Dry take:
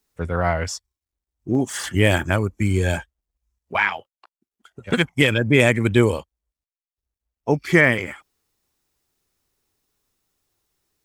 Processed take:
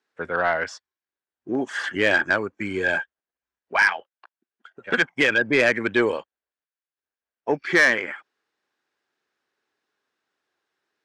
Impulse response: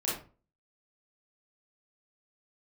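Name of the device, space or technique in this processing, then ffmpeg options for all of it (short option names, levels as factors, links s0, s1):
intercom: -af "highpass=330,lowpass=3500,equalizer=f=1600:t=o:w=0.31:g=9.5,asoftclip=type=tanh:threshold=0.335"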